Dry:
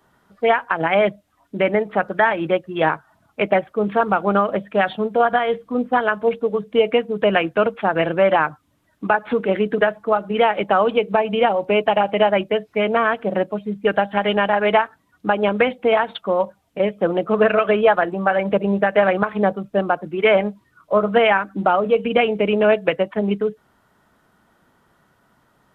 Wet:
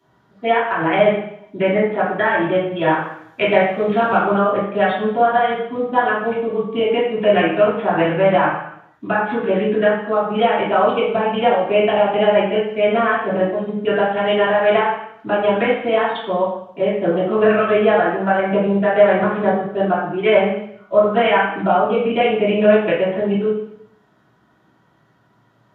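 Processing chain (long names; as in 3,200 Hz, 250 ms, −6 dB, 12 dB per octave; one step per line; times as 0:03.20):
0:02.92–0:04.18: high-shelf EQ 2,100 Hz +10.5 dB
convolution reverb RT60 0.70 s, pre-delay 3 ms, DRR −7.5 dB
level −10.5 dB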